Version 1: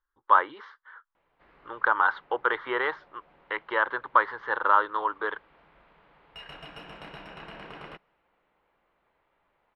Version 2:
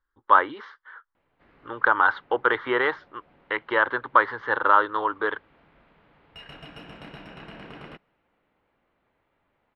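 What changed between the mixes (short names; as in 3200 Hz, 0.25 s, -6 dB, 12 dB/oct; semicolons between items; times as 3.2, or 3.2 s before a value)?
speech +4.5 dB; master: add fifteen-band EQ 100 Hz +11 dB, 250 Hz +7 dB, 1000 Hz -3 dB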